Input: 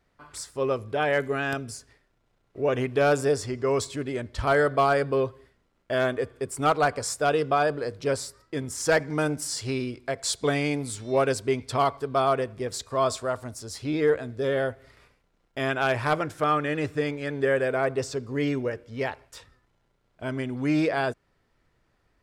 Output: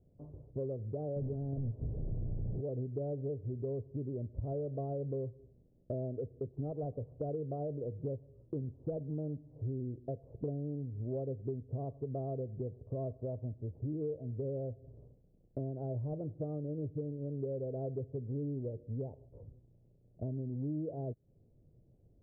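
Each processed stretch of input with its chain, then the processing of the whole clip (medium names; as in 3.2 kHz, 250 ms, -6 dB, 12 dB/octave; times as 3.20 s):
1.16–2.61 s: one-bit delta coder 32 kbps, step -23.5 dBFS + bass shelf 140 Hz +12 dB
whole clip: steep low-pass 600 Hz 36 dB/octave; peaking EQ 120 Hz +10 dB 1.3 oct; compression 5:1, threshold -38 dBFS; trim +1 dB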